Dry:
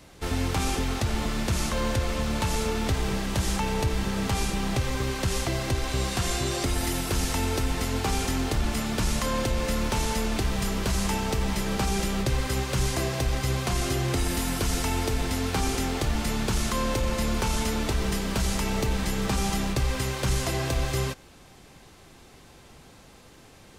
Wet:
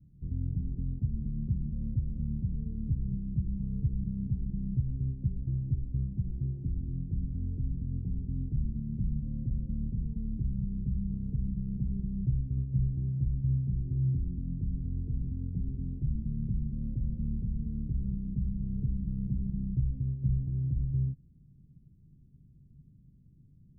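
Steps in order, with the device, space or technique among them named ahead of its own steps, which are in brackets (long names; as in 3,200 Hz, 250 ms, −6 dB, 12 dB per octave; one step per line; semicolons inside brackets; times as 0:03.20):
the neighbour's flat through the wall (low-pass filter 210 Hz 24 dB per octave; parametric band 140 Hz +8 dB 0.49 octaves)
level −5 dB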